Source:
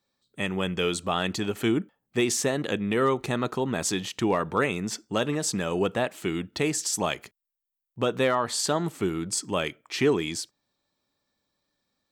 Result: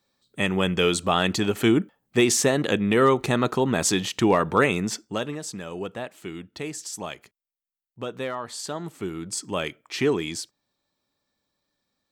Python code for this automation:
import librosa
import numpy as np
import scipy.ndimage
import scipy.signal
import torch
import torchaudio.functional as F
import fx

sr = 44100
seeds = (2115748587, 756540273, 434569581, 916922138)

y = fx.gain(x, sr, db=fx.line((4.79, 5.0), (5.46, -7.0), (8.67, -7.0), (9.64, 0.0)))